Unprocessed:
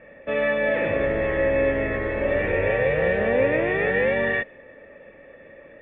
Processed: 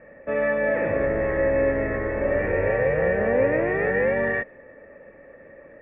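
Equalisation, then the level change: LPF 2000 Hz 24 dB/oct; 0.0 dB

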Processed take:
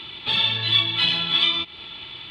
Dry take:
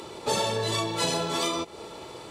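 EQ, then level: EQ curve 110 Hz 0 dB, 330 Hz -8 dB, 490 Hz -20 dB, 760 Hz -10 dB, 1100 Hz -6 dB, 3400 Hz +15 dB, 6400 Hz -26 dB, 14000 Hz -20 dB; +2.0 dB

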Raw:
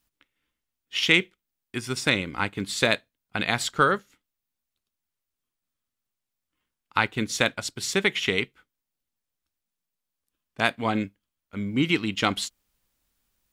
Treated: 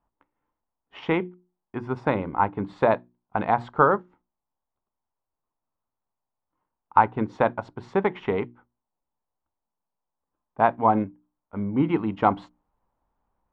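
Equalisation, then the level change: synth low-pass 910 Hz, resonance Q 3.5; notches 60/120/180/240/300/360 Hz; +1.5 dB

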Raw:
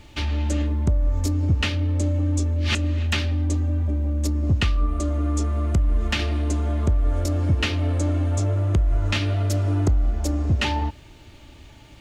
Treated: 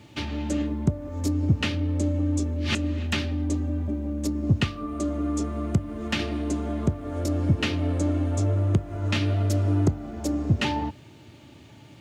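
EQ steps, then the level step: HPF 110 Hz 24 dB/oct; low shelf 410 Hz +8 dB; -3.5 dB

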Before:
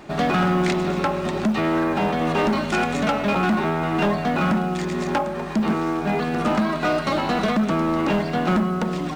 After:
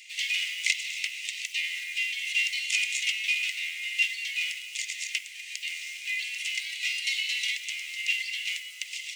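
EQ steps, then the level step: rippled Chebyshev high-pass 2000 Hz, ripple 6 dB; +8.0 dB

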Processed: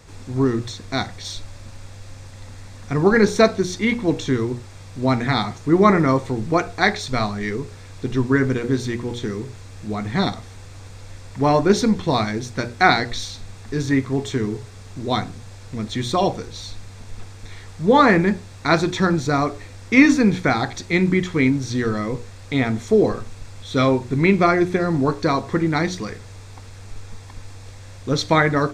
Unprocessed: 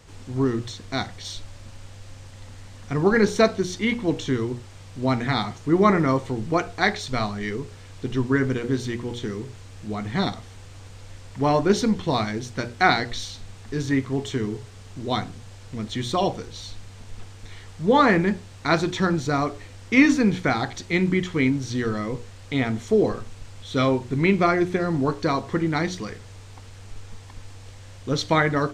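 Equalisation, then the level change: notch 3000 Hz, Q 8.2; +3.5 dB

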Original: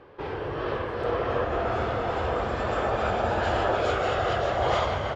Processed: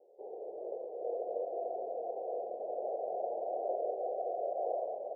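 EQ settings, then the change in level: Chebyshev band-pass 220–740 Hz, order 4; bell 300 Hz -14 dB 0.46 oct; fixed phaser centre 540 Hz, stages 4; -6.0 dB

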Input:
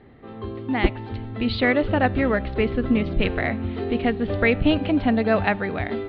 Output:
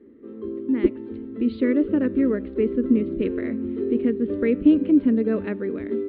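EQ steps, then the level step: band-pass 320 Hz, Q 1.2; fixed phaser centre 310 Hz, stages 4; +5.0 dB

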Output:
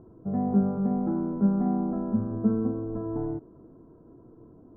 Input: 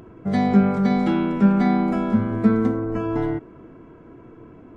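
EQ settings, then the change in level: Bessel low-pass 730 Hz, order 8; -6.5 dB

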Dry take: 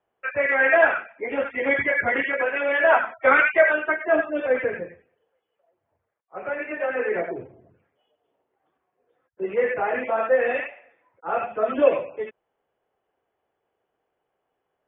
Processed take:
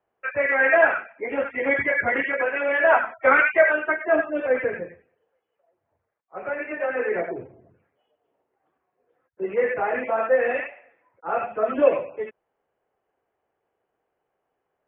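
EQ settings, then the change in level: LPF 2800 Hz 24 dB/oct; 0.0 dB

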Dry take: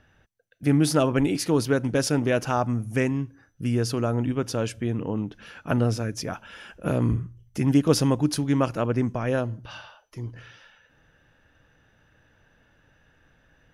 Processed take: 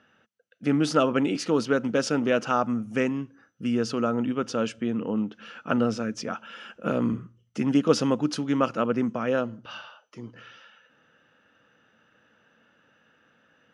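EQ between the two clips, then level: speaker cabinet 190–7600 Hz, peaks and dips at 220 Hz +9 dB, 500 Hz +5 dB, 1300 Hz +9 dB, 2900 Hz +6 dB; -3.0 dB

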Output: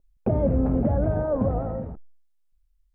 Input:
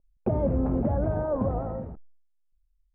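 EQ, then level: notch 360 Hz, Q 12; dynamic EQ 1000 Hz, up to -5 dB, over -46 dBFS, Q 2.3; +3.5 dB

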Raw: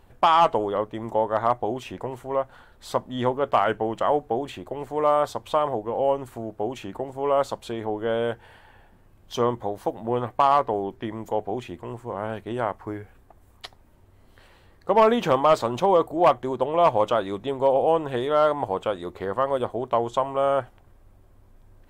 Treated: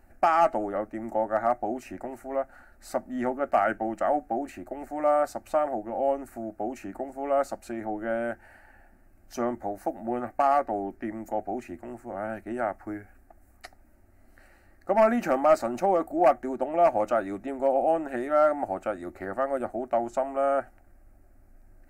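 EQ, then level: fixed phaser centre 680 Hz, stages 8; 0.0 dB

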